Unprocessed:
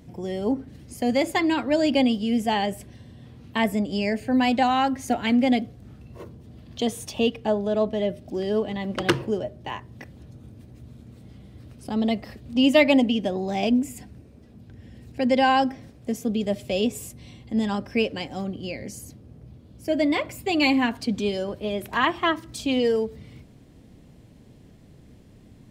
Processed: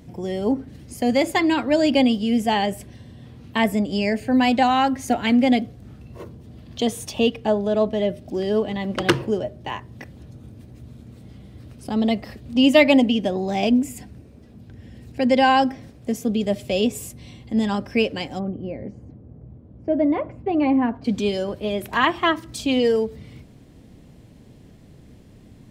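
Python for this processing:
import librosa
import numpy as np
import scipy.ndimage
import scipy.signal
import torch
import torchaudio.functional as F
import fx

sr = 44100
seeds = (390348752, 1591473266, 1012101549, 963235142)

y = fx.lowpass(x, sr, hz=1000.0, slope=12, at=(18.38, 21.04), fade=0.02)
y = F.gain(torch.from_numpy(y), 3.0).numpy()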